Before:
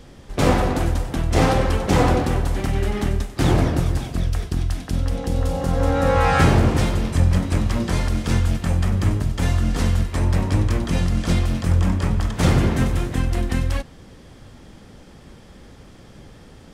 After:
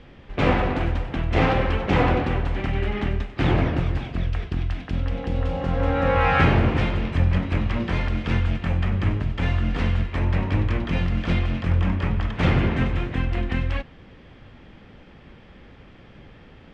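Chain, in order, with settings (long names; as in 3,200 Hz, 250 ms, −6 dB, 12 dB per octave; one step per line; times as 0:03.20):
low-pass with resonance 2,600 Hz, resonance Q 1.8
level −3 dB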